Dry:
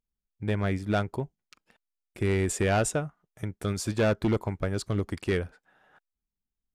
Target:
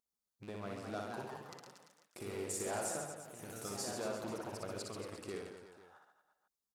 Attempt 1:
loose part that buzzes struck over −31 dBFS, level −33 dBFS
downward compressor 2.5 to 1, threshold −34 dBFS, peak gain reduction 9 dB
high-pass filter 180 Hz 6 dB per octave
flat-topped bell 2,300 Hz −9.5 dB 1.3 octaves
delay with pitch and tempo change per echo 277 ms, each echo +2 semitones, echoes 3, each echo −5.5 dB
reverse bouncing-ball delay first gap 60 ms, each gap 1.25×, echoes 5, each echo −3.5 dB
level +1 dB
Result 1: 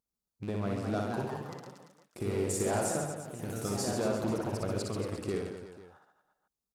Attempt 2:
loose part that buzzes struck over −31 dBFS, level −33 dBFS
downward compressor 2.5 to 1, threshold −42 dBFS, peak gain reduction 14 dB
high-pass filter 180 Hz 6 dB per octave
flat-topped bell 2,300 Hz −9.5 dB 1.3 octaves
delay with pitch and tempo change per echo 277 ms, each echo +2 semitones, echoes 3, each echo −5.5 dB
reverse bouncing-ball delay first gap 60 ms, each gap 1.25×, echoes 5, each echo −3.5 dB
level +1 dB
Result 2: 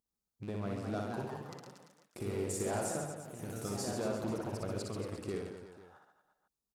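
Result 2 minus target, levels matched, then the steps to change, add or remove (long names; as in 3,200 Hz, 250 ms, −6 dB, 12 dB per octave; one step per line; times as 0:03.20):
250 Hz band +3.5 dB
change: high-pass filter 660 Hz 6 dB per octave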